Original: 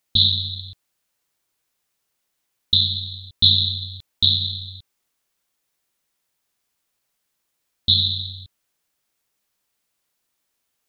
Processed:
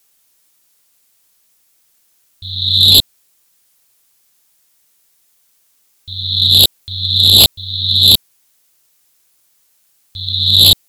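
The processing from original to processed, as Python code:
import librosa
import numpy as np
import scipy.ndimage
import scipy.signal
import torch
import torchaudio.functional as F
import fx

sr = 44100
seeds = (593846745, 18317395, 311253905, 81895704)

y = np.flip(x).copy()
y = fx.high_shelf(y, sr, hz=4400.0, db=10.5)
y = fx.fold_sine(y, sr, drive_db=10, ceiling_db=3.0)
y = y * 10.0 ** (-4.5 / 20.0)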